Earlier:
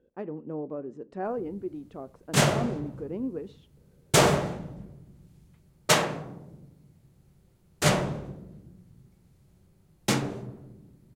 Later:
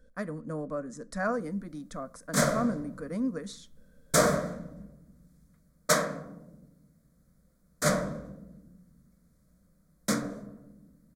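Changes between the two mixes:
speech: remove band-pass filter 380 Hz, Q 1.2; master: add static phaser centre 560 Hz, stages 8

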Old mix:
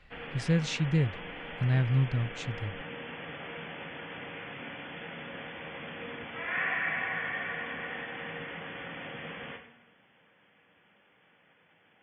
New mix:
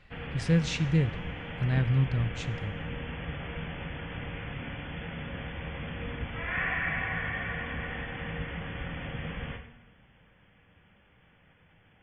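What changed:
speech: send on; background: remove high-pass 270 Hz 12 dB/octave

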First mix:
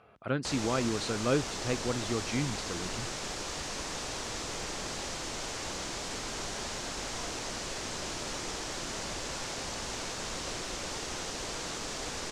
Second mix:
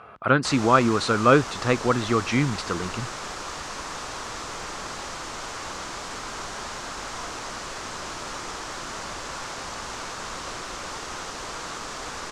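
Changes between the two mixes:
speech +9.0 dB; master: add peaking EQ 1.2 kHz +9.5 dB 1.1 oct

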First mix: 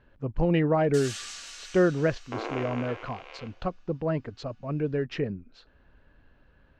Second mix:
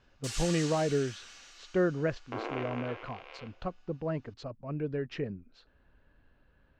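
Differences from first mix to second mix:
speech -5.5 dB; first sound: entry -0.70 s; second sound -3.0 dB

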